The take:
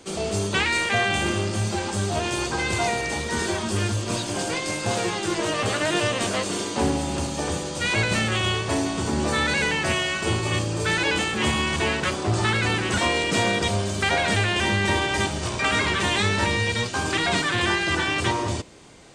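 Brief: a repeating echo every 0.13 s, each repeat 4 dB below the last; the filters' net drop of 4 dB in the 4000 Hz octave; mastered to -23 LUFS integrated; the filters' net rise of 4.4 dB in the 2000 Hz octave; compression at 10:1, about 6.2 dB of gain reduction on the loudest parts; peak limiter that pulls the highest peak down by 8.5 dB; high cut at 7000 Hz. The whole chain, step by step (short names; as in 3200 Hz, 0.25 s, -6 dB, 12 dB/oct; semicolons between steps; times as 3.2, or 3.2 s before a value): LPF 7000 Hz; bell 2000 Hz +7.5 dB; bell 4000 Hz -9 dB; compressor 10:1, threshold -22 dBFS; limiter -19 dBFS; feedback echo 0.13 s, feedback 63%, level -4 dB; gain +2.5 dB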